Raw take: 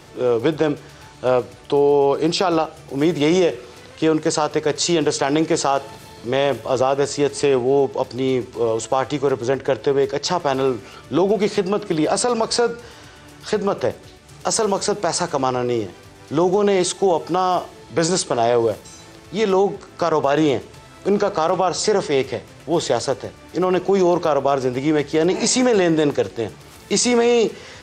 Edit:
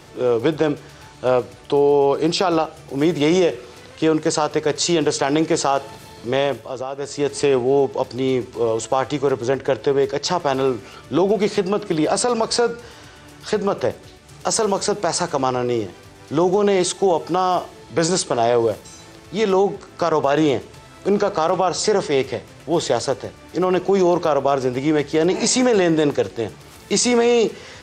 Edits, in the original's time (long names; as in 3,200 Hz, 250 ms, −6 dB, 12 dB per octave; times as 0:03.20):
0:06.38–0:07.35: duck −10 dB, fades 0.36 s